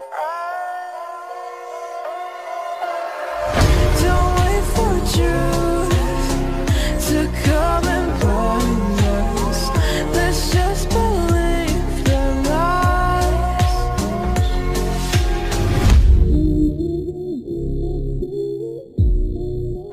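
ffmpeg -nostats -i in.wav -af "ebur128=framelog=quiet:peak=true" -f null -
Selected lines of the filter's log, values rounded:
Integrated loudness:
  I:         -19.2 LUFS
  Threshold: -29.4 LUFS
Loudness range:
  LRA:         4.2 LU
  Threshold: -38.9 LUFS
  LRA low:   -22.1 LUFS
  LRA high:  -17.9 LUFS
True peak:
  Peak:       -4.4 dBFS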